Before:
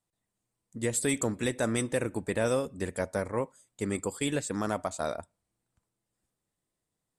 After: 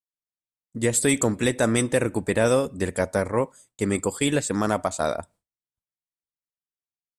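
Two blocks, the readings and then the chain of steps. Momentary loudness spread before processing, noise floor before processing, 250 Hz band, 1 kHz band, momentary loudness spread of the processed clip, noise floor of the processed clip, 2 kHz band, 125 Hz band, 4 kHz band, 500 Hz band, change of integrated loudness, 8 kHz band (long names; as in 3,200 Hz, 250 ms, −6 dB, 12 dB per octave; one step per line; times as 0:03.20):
7 LU, below −85 dBFS, +7.5 dB, +7.5 dB, 7 LU, below −85 dBFS, +7.5 dB, +7.5 dB, +7.5 dB, +7.5 dB, +7.5 dB, +7.5 dB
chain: downward expander −54 dBFS
level +7.5 dB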